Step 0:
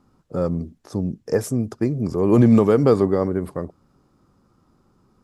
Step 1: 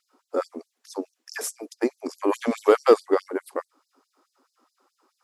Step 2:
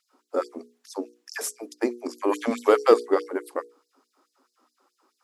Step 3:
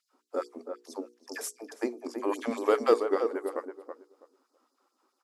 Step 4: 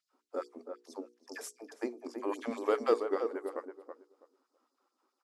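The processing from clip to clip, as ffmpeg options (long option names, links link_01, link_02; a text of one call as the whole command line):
ffmpeg -i in.wav -af "aeval=exprs='0.596*(cos(1*acos(clip(val(0)/0.596,-1,1)))-cos(1*PI/2))+0.015*(cos(7*acos(clip(val(0)/0.596,-1,1)))-cos(7*PI/2))':channel_layout=same,asubboost=boost=6.5:cutoff=130,afftfilt=real='re*gte(b*sr/1024,240*pow(4100/240,0.5+0.5*sin(2*PI*4.7*pts/sr)))':imag='im*gte(b*sr/1024,240*pow(4100/240,0.5+0.5*sin(2*PI*4.7*pts/sr)))':win_size=1024:overlap=0.75,volume=4.5dB" out.wav
ffmpeg -i in.wav -af "bandreject=frequency=60:width_type=h:width=6,bandreject=frequency=120:width_type=h:width=6,bandreject=frequency=180:width_type=h:width=6,bandreject=frequency=240:width_type=h:width=6,bandreject=frequency=300:width_type=h:width=6,bandreject=frequency=360:width_type=h:width=6,bandreject=frequency=420:width_type=h:width=6,bandreject=frequency=480:width_type=h:width=6" out.wav
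ffmpeg -i in.wav -filter_complex "[0:a]asplit=2[link_01][link_02];[link_02]adelay=327,lowpass=frequency=1200:poles=1,volume=-6dB,asplit=2[link_03][link_04];[link_04]adelay=327,lowpass=frequency=1200:poles=1,volume=0.21,asplit=2[link_05][link_06];[link_06]adelay=327,lowpass=frequency=1200:poles=1,volume=0.21[link_07];[link_01][link_03][link_05][link_07]amix=inputs=4:normalize=0,volume=-6dB" out.wav
ffmpeg -i in.wav -af "highshelf=frequency=10000:gain=-8,volume=-5dB" out.wav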